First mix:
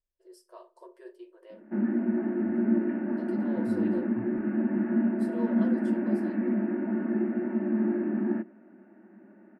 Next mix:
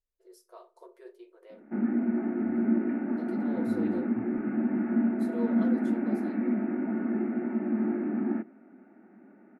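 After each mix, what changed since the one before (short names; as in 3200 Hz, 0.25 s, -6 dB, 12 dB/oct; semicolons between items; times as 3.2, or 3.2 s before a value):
master: remove ripple EQ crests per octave 1.3, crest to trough 8 dB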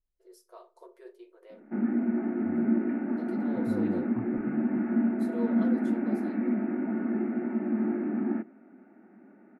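second voice +6.5 dB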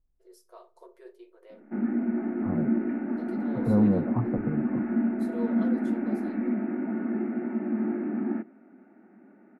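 second voice +12.0 dB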